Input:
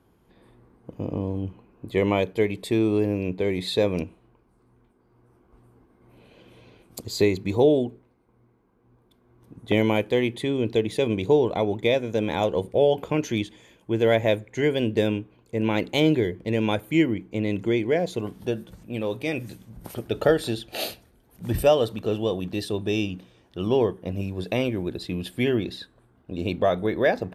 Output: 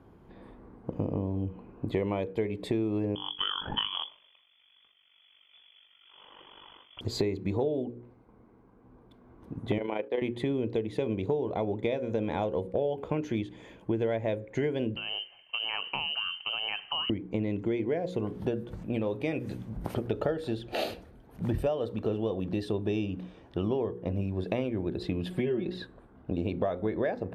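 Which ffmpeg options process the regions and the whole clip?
-filter_complex "[0:a]asettb=1/sr,asplit=3[a][b][c];[a]atrim=end=3.154[d];[b]atrim=start=3.15:end=7.01,asetpts=PTS-STARTPTS,afade=t=in:d=0.004:c=qsin,afade=t=out:st=3.856:d=0.004:c=qsin,highshelf=f=2.4k:g=9,aeval=exprs='val(0)*sin(2*PI*24*n/s)':c=same,lowpass=f=3k:t=q:w=0.5098,lowpass=f=3k:t=q:w=0.6013,lowpass=f=3k:t=q:w=0.9,lowpass=f=3k:t=q:w=2.563,afreqshift=-3500[e];[c]atrim=start=7.006[f];[d][e]acrossfade=d=0.004:c1=hsin:c2=qsin[g];[g][f]acrossfade=d=0.004:c1=qsin:c2=hsin,asettb=1/sr,asplit=3[h][i][j];[h]atrim=end=9.784[k];[i]atrim=start=9.78:end=10.22,asetpts=PTS-STARTPTS,afade=t=in:d=0.004:c=qsin,afade=t=out:st=0.436:d=0.004:c=qsin,agate=range=-33dB:threshold=-35dB:ratio=3:release=100:detection=peak,highpass=390,lowpass=3.5k,tremolo=f=27:d=0.571[l];[j]atrim=start=10.216[m];[k][l]acrossfade=d=0.004:c1=hsin:c2=qsin[n];[n][m]acrossfade=d=0.004:c1=qsin:c2=hsin,asettb=1/sr,asplit=3[o][p][q];[o]atrim=end=14.964[r];[p]atrim=start=14.96:end=17.1,asetpts=PTS-STARTPTS,afade=t=in:d=0.004:c=qsin,afade=t=out:st=2.136:d=0.004:c=qsin,acompressor=threshold=-27dB:ratio=10:attack=3.2:release=140:knee=1:detection=peak,lowpass=f=2.7k:t=q:w=0.5098,lowpass=f=2.7k:t=q:w=0.6013,lowpass=f=2.7k:t=q:w=0.9,lowpass=f=2.7k:t=q:w=2.563,afreqshift=-3200[s];[q]atrim=start=17.096[t];[r][s]acrossfade=d=0.004:c1=hsin:c2=qsin[u];[u][t]acrossfade=d=0.004:c1=qsin:c2=hsin,asettb=1/sr,asplit=3[v][w][x];[v]atrim=end=25.304[y];[w]atrim=start=25.3:end=25.75,asetpts=PTS-STARTPTS,afade=t=in:d=0.004:c=qsin,afade=t=out:st=0.446:d=0.004:c=qsin,aecho=1:1:5.4:0.91,atrim=end_sample=19845,acrossover=split=560|3500[z][aa][ab];[z]acompressor=threshold=-21dB:ratio=4[ac];[aa]acompressor=threshold=-34dB:ratio=4[ad];[ab]acompressor=threshold=-50dB:ratio=4[ae];[ac][ad][ae]amix=inputs=3:normalize=0[af];[x]atrim=start=25.746[ag];[y][af]acrossfade=d=0.004:c1=hsin:c2=qsin[ah];[ah][ag]acrossfade=d=0.004:c1=qsin:c2=hsin,lowpass=f=1.3k:p=1,bandreject=f=60:t=h:w=6,bandreject=f=120:t=h:w=6,bandreject=f=180:t=h:w=6,bandreject=f=240:t=h:w=6,bandreject=f=300:t=h:w=6,bandreject=f=360:t=h:w=6,bandreject=f=420:t=h:w=6,bandreject=f=480:t=h:w=6,bandreject=f=540:t=h:w=6,acompressor=threshold=-35dB:ratio=6,volume=7.5dB"

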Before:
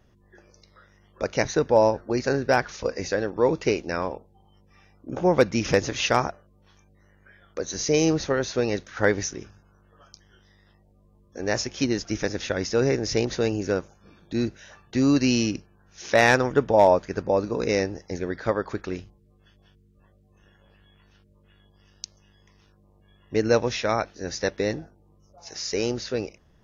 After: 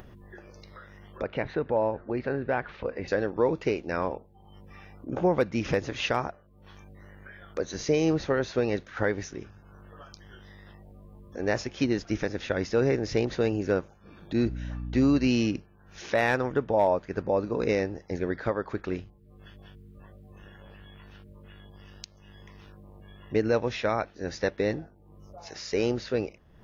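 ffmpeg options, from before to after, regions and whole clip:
-filter_complex "[0:a]asettb=1/sr,asplit=3[a][b][c];[a]atrim=end=1.224[d];[b]atrim=start=1.22:end=3.08,asetpts=PTS-STARTPTS,afade=t=in:d=0.004:c=qsin,afade=t=out:st=1.856:d=0.004:c=qsin,lowpass=f=3.4k:w=0.5412,lowpass=f=3.4k:w=1.3066,acompressor=threshold=-34dB:ratio=1.5:attack=3.2:release=140:knee=1:detection=peak[e];[c]atrim=start=3.076[f];[d][e]acrossfade=d=0.004:c1=hsin:c2=qsin[g];[g][f]acrossfade=d=0.004:c1=qsin:c2=hsin,asettb=1/sr,asplit=3[h][i][j];[h]atrim=end=14.454[k];[i]atrim=start=14.45:end=15.28,asetpts=PTS-STARTPTS,afade=t=in:d=0.004:c=qsin,afade=t=out:st=0.826:d=0.004:c=qsin,bandreject=f=1.7k:w=24,aeval=exprs='val(0)+0.0224*(sin(2*PI*60*n/s)+sin(2*PI*2*60*n/s)/2+sin(2*PI*3*60*n/s)/3+sin(2*PI*4*60*n/s)/4+sin(2*PI*5*60*n/s)/5)':c=same[l];[j]atrim=start=15.276[m];[k][l]acrossfade=d=0.004:c1=hsin:c2=qsin[n];[n][m]acrossfade=d=0.004:c1=qsin:c2=hsin,equalizer=f=6.1k:w=1.2:g=-10.5,alimiter=limit=-14dB:level=0:latency=1:release=437,acompressor=mode=upward:threshold=-38dB:ratio=2.5"

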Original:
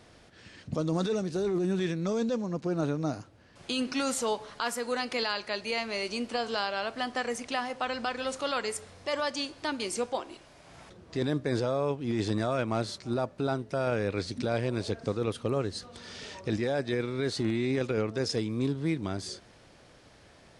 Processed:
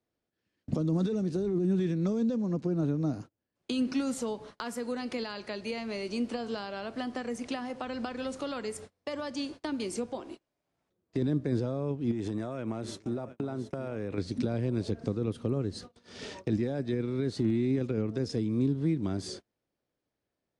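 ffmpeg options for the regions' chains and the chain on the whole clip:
-filter_complex "[0:a]asettb=1/sr,asplit=3[a][b][c];[a]atrim=end=12.114[d];[b]atrim=start=12.11:end=14.18,asetpts=PTS-STARTPTS,afade=t=in:d=0.004:c=qsin,afade=t=out:st=2.066:d=0.004:c=qsin,equalizer=f=4.5k:w=3.2:g=-8.5,acompressor=threshold=-32dB:ratio=6:attack=3.2:release=140:knee=1:detection=peak,aecho=1:1:723:0.211,atrim=end_sample=91287[e];[c]atrim=start=14.176[f];[d][e]acrossfade=d=0.004:c1=hsin:c2=qsin[g];[g][f]acrossfade=d=0.004:c1=qsin:c2=hsin,agate=range=-33dB:threshold=-43dB:ratio=16:detection=peak,equalizer=f=310:w=0.71:g=7,acrossover=split=250[h][i];[i]acompressor=threshold=-35dB:ratio=6[j];[h][j]amix=inputs=2:normalize=0"

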